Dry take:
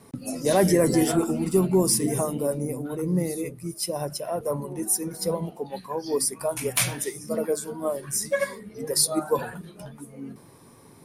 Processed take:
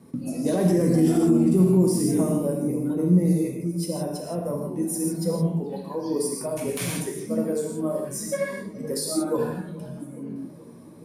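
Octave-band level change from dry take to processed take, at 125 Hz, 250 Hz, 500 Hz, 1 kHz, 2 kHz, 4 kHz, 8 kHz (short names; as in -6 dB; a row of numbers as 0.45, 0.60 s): +5.5, +5.0, -0.5, -5.0, -5.5, -6.5, -6.0 dB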